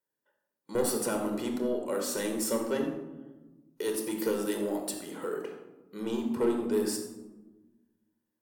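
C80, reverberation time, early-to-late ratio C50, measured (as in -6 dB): 7.5 dB, 1.2 s, 5.0 dB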